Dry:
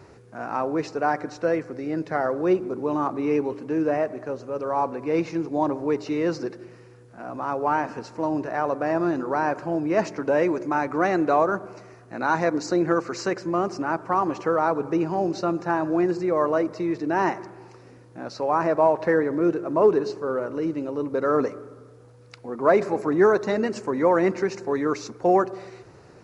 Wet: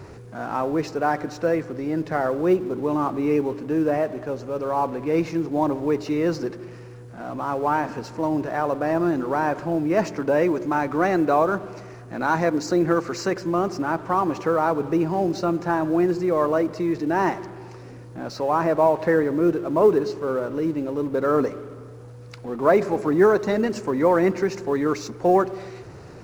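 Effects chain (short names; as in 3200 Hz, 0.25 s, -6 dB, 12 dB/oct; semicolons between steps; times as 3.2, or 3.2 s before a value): G.711 law mismatch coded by mu; low shelf 170 Hz +6.5 dB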